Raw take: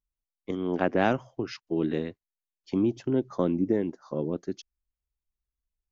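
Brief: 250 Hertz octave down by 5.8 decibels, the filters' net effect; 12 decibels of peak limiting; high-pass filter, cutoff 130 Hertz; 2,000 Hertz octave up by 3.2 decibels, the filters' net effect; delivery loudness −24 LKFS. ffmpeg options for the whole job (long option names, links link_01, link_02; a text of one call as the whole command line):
ffmpeg -i in.wav -af "highpass=130,equalizer=frequency=250:width_type=o:gain=-7.5,equalizer=frequency=2000:width_type=o:gain=4.5,volume=11dB,alimiter=limit=-10.5dB:level=0:latency=1" out.wav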